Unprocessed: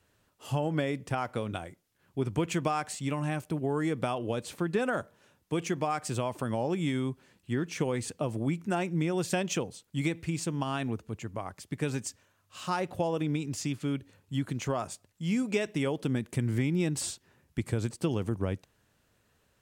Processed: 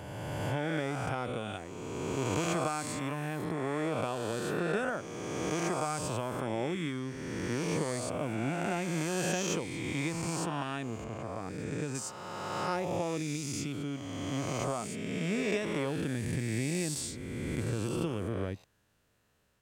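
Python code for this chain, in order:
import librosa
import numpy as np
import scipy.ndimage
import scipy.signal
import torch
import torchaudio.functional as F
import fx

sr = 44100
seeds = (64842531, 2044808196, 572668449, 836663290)

y = fx.spec_swells(x, sr, rise_s=2.47)
y = fx.high_shelf(y, sr, hz=3400.0, db=-11.5, at=(11.04, 11.95))
y = F.gain(torch.from_numpy(y), -6.5).numpy()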